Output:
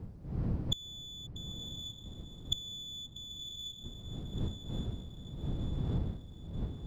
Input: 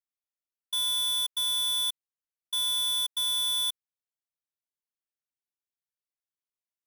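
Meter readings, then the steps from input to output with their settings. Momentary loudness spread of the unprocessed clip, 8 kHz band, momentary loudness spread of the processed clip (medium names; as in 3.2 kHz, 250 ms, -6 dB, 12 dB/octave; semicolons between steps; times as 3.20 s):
7 LU, -16.0 dB, 10 LU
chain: spectral contrast enhancement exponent 2.8; wind noise 140 Hz -46 dBFS; peaking EQ 4.7 kHz +6.5 dB 0.37 oct; inverted gate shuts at -30 dBFS, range -32 dB; on a send: echo that smears into a reverb 1068 ms, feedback 50%, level -10 dB; on the sum: sliding maximum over 3 samples; trim +13 dB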